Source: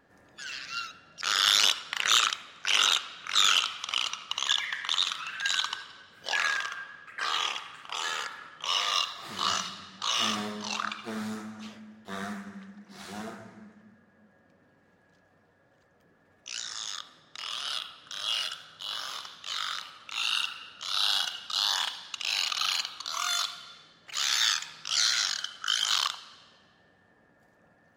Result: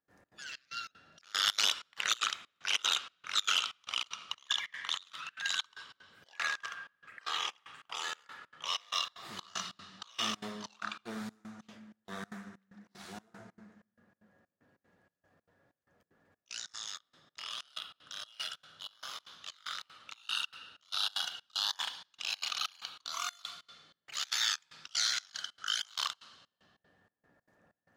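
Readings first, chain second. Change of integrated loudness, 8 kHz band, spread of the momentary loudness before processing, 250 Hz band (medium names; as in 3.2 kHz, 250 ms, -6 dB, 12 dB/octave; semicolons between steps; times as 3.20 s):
-7.5 dB, -7.5 dB, 17 LU, -7.5 dB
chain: trance gate ".xx.xxx." 190 bpm -24 dB; trim -5.5 dB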